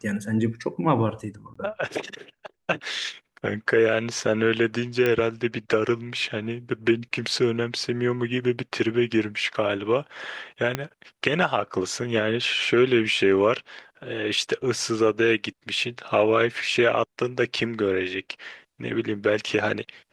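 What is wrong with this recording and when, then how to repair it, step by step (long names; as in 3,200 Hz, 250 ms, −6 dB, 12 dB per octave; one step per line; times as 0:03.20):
0:01.54–0:01.55: drop-out 15 ms
0:05.06: click −11 dBFS
0:10.75: click −10 dBFS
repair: click removal
repair the gap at 0:01.54, 15 ms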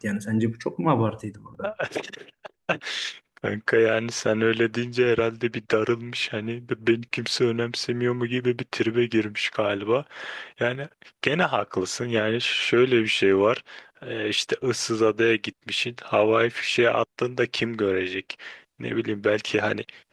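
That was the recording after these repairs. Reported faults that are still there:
0:10.75: click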